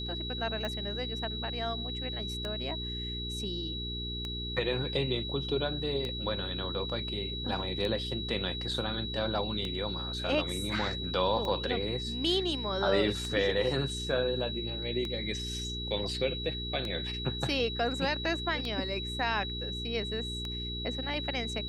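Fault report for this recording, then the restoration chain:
hum 60 Hz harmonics 7 -39 dBFS
tick 33 1/3 rpm -22 dBFS
tone 3900 Hz -37 dBFS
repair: de-click; de-hum 60 Hz, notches 7; notch 3900 Hz, Q 30

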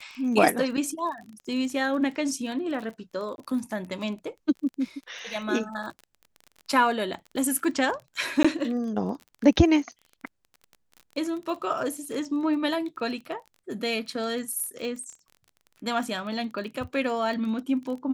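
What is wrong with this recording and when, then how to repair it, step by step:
crackle 30/s -35 dBFS
3.36–3.38 gap 21 ms
8.43–8.45 gap 15 ms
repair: de-click; interpolate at 3.36, 21 ms; interpolate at 8.43, 15 ms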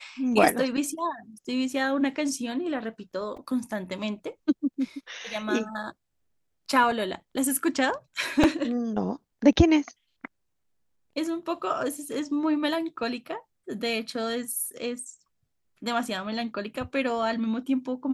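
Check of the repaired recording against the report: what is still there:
none

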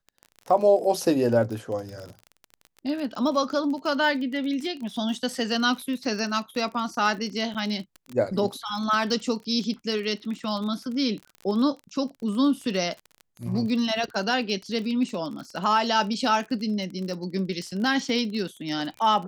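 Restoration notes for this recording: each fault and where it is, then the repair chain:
crackle 34/s -32 dBFS
7.54–7.55 gap 7.7 ms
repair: de-click; interpolate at 7.54, 7.7 ms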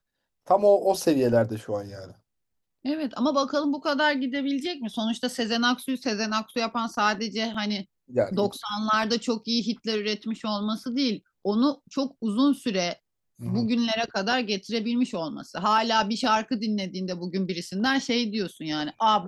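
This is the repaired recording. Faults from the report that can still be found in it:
none

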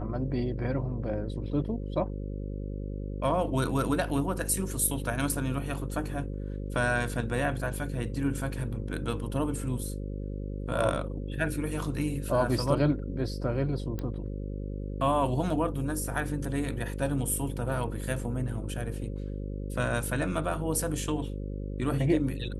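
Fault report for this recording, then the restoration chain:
buzz 50 Hz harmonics 11 -35 dBFS
13.99 pop -22 dBFS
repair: de-click; de-hum 50 Hz, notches 11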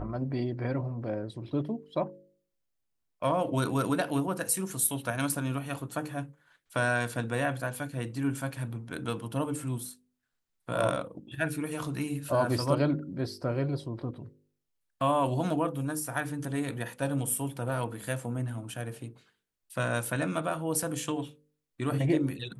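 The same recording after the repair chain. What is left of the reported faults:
none

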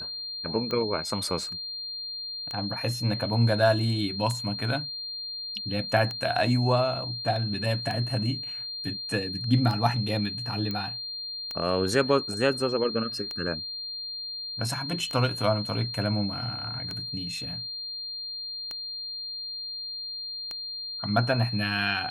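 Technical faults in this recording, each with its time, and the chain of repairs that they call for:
tick 33 1/3 rpm -19 dBFS
tone 4200 Hz -33 dBFS
10.71 pop -19 dBFS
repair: de-click; notch 4200 Hz, Q 30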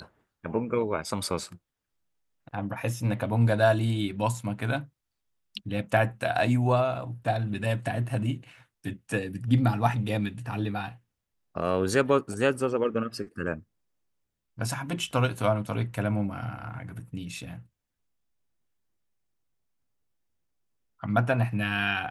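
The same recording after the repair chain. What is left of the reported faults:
none

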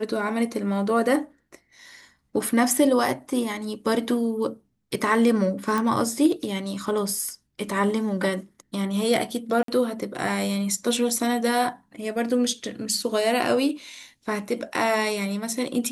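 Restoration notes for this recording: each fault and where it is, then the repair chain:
5.78 pop
9.63–9.68 gap 53 ms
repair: de-click; interpolate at 9.63, 53 ms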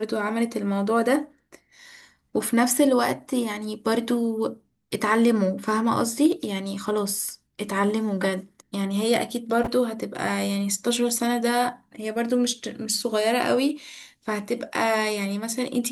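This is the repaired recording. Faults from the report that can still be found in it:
none

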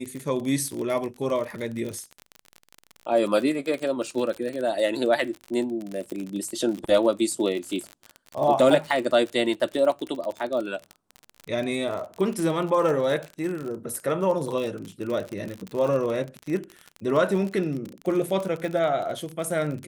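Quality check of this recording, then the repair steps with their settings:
crackle 42/s -29 dBFS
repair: de-click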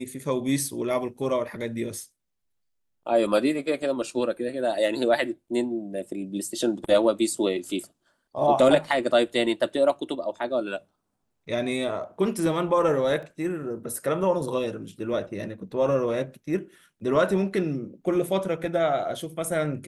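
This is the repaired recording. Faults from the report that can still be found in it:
none

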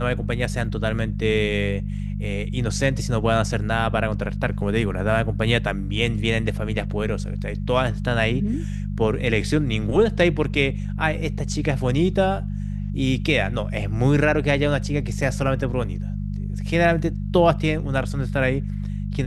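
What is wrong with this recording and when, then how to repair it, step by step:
hum 50 Hz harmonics 4 -27 dBFS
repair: de-hum 50 Hz, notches 4

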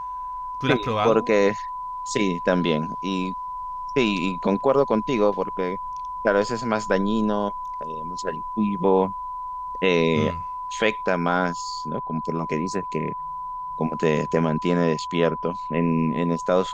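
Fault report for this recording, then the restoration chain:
tone 1000 Hz -29 dBFS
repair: notch 1000 Hz, Q 30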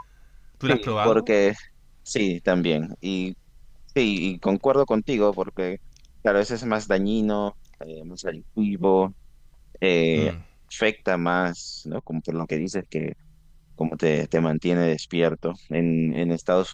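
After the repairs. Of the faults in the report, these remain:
none

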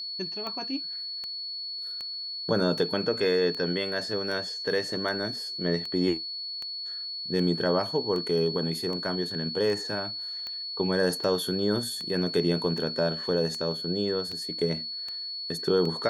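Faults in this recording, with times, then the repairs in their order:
tick 78 rpm -23 dBFS
tone 4400 Hz -33 dBFS
14.32 gap 4.1 ms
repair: de-click; notch 4400 Hz, Q 30; interpolate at 14.32, 4.1 ms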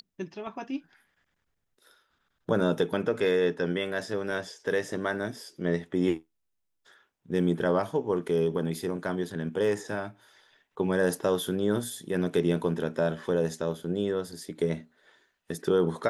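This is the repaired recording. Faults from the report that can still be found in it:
none

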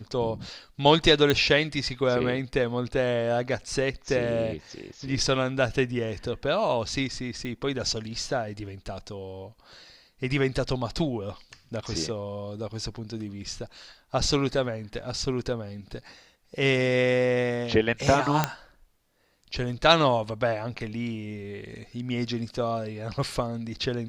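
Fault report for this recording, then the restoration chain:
1.3 pop -10 dBFS
7.45 pop -23 dBFS
18.44 pop -7 dBFS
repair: de-click

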